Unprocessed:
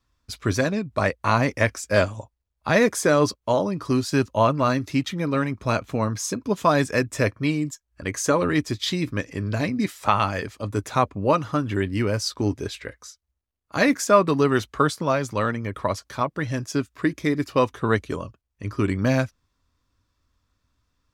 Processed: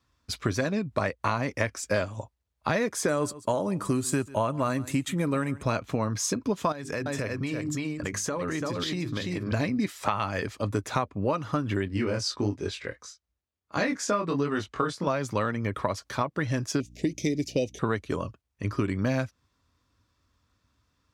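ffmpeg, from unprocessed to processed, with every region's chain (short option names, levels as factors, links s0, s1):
-filter_complex "[0:a]asettb=1/sr,asplit=3[s0][s1][s2];[s0]atrim=end=3.084[s3];[s1]atrim=start=3.08:end=5.63,asetpts=PTS-STARTPTS,afade=t=in:d=0.004:c=qsin,afade=t=out:st=2.546:d=0.004:c=qsin,highshelf=f=6500:t=q:w=3:g=7.5,aecho=1:1:139:0.0708,atrim=end_sample=112455[s4];[s2]atrim=start=5.626[s5];[s3][s4]acrossfade=d=0.004:c1=hsin:c2=qsin[s6];[s6][s5]acrossfade=d=0.004:c1=qsin:c2=hsin,asettb=1/sr,asplit=3[s7][s8][s9];[s7]atrim=end=6.724[s10];[s8]atrim=start=6.72:end=9.52,asetpts=PTS-STARTPTS,afade=t=in:d=0.004:c=qsin,afade=t=out:st=2.796:d=0.004:c=qsin,bandreject=f=50:t=h:w=6,bandreject=f=100:t=h:w=6,bandreject=f=150:t=h:w=6,bandreject=f=200:t=h:w=6,bandreject=f=250:t=h:w=6,bandreject=f=300:t=h:w=6,bandreject=f=350:t=h:w=6,bandreject=f=400:t=h:w=6,aecho=1:1:338:0.422,atrim=end_sample=123480,acompressor=threshold=0.0398:ratio=16:attack=3.2:release=140:knee=1:detection=peak[s11];[s9]atrim=start=9.516[s12];[s10][s11]acrossfade=d=0.004:c1=hsin:c2=qsin[s13];[s13][s12]acrossfade=d=0.004:c1=qsin:c2=hsin,asettb=1/sr,asplit=3[s14][s15][s16];[s14]atrim=end=11.884[s17];[s15]atrim=start=11.88:end=15.07,asetpts=PTS-STARTPTS,afade=t=in:d=0.004:c=qsin,afade=t=out:st=3.186:d=0.004:c=qsin,lowpass=8600,flanger=delay=19.5:depth=4.7:speed=1.5[s18];[s16]atrim=start=15.066[s19];[s17][s18]acrossfade=d=0.004:c1=hsin:c2=qsin[s20];[s20][s19]acrossfade=d=0.004:c1=qsin:c2=hsin,asettb=1/sr,asplit=3[s21][s22][s23];[s21]atrim=end=16.804[s24];[s22]atrim=start=16.8:end=17.79,asetpts=PTS-STARTPTS,afade=t=in:d=0.004:c=qsin,afade=t=out:st=0.986:d=0.004:c=qsin,asuperstop=centerf=1200:order=8:qfactor=0.81,equalizer=f=6100:w=2.5:g=11,aeval=exprs='val(0)+0.00398*(sin(2*PI*60*n/s)+sin(2*PI*2*60*n/s)/2+sin(2*PI*3*60*n/s)/3+sin(2*PI*4*60*n/s)/4+sin(2*PI*5*60*n/s)/5)':c=same[s25];[s23]atrim=start=17.786[s26];[s24][s25]acrossfade=d=0.004:c1=hsin:c2=qsin[s27];[s27][s26]acrossfade=d=0.004:c1=qsin:c2=hsin,highpass=64,highshelf=f=11000:g=-6,acompressor=threshold=0.0501:ratio=6,volume=1.33"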